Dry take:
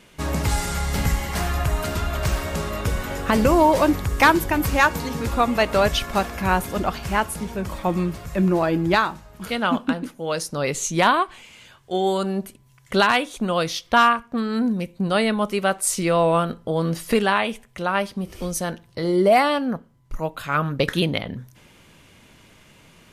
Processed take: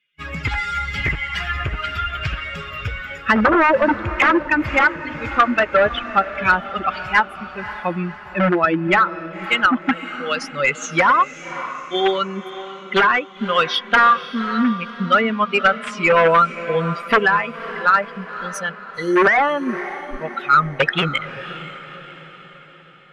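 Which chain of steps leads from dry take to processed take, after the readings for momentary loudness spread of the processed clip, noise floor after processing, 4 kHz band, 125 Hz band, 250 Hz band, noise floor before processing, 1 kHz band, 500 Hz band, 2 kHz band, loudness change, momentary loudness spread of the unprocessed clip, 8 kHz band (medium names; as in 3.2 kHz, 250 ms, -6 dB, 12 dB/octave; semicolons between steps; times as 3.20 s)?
14 LU, -40 dBFS, +2.0 dB, -3.0 dB, 0.0 dB, -53 dBFS, +4.0 dB, +1.0 dB, +7.0 dB, +3.5 dB, 11 LU, -9.5 dB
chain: expander on every frequency bin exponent 2; wavefolder -19 dBFS; high-order bell 2.1 kHz +15.5 dB; low-pass that closes with the level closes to 870 Hz, closed at -16 dBFS; overdrive pedal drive 16 dB, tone 1.4 kHz, clips at -5 dBFS; on a send: echo that smears into a reverb 547 ms, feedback 50%, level -13.5 dB; on the sum: trim +5 dB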